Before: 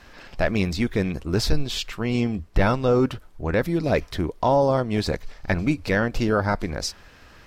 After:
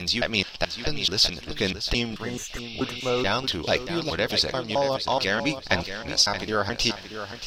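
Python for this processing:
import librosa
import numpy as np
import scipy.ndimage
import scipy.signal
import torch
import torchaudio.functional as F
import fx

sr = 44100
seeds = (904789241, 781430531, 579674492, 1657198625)

p1 = fx.block_reorder(x, sr, ms=216.0, group=4)
p2 = fx.band_shelf(p1, sr, hz=4000.0, db=11.5, octaves=1.3)
p3 = fx.rider(p2, sr, range_db=4, speed_s=0.5)
p4 = p3 + fx.echo_feedback(p3, sr, ms=627, feedback_pct=28, wet_db=-10.0, dry=0)
p5 = fx.spec_repair(p4, sr, seeds[0], start_s=2.22, length_s=0.98, low_hz=2100.0, high_hz=5900.0, source='both')
y = fx.low_shelf(p5, sr, hz=410.0, db=-10.5)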